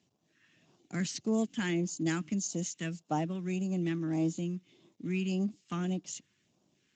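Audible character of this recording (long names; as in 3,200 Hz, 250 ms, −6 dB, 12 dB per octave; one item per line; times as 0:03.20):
a quantiser's noise floor 12 bits, dither none
phaser sweep stages 2, 1.7 Hz, lowest notch 680–1,900 Hz
Speex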